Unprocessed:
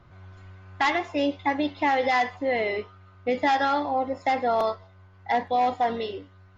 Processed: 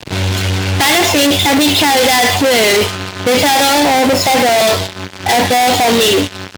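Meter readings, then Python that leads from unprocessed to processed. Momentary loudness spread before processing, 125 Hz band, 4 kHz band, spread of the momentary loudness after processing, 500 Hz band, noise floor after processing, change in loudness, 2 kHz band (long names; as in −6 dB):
11 LU, +25.5 dB, +25.0 dB, 6 LU, +14.0 dB, −30 dBFS, +14.5 dB, +15.0 dB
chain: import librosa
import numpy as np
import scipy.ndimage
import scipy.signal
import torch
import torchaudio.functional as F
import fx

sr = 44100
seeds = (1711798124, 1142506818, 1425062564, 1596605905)

y = fx.high_shelf_res(x, sr, hz=2400.0, db=8.0, q=1.5)
y = fx.fuzz(y, sr, gain_db=51.0, gate_db=-50.0)
y = fx.power_curve(y, sr, exponent=1.4)
y = scipy.signal.sosfilt(scipy.signal.butter(2, 82.0, 'highpass', fs=sr, output='sos'), y)
y = fx.peak_eq(y, sr, hz=1200.0, db=-5.5, octaves=0.47)
y = y * librosa.db_to_amplitude(5.0)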